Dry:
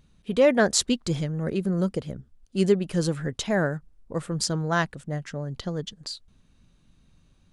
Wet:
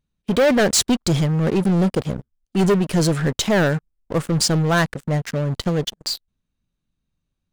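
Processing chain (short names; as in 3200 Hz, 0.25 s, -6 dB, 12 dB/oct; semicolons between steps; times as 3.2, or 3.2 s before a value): sample leveller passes 5; gain -7.5 dB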